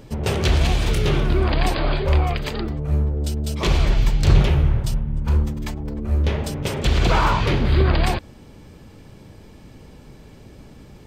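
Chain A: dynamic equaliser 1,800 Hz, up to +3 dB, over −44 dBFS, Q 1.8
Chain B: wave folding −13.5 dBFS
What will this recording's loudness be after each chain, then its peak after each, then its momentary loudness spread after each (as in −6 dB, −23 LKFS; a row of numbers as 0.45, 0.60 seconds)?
−21.0, −22.5 LKFS; −3.5, −13.5 dBFS; 8, 6 LU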